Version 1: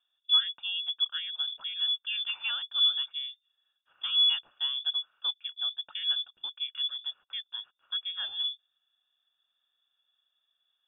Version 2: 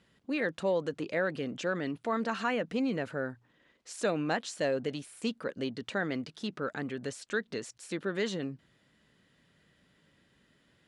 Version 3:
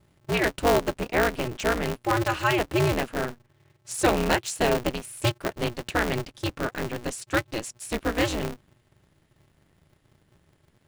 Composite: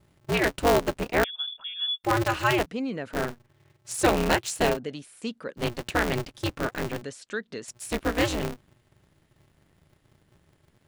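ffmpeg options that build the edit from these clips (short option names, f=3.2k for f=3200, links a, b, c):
-filter_complex "[1:a]asplit=3[a][b][c];[2:a]asplit=5[d][e][f][g][h];[d]atrim=end=1.242[i];[0:a]atrim=start=1.238:end=2.042[j];[e]atrim=start=2.038:end=2.662[k];[a]atrim=start=2.658:end=3.132[l];[f]atrim=start=3.128:end=4.79[m];[b]atrim=start=4.69:end=5.65[n];[g]atrim=start=5.55:end=7.022[o];[c]atrim=start=7.018:end=7.682[p];[h]atrim=start=7.678[q];[i][j]acrossfade=d=0.004:c1=hsin:c2=hsin[r];[r][k]acrossfade=d=0.004:c1=hsin:c2=hsin[s];[s][l]acrossfade=d=0.004:c1=hsin:c2=hsin[t];[t][m]acrossfade=d=0.004:c1=hsin:c2=hsin[u];[u][n]acrossfade=d=0.1:c1=tri:c2=tri[v];[v][o]acrossfade=d=0.1:c1=tri:c2=tri[w];[w][p]acrossfade=d=0.004:c1=hsin:c2=hsin[x];[x][q]acrossfade=d=0.004:c1=hsin:c2=hsin"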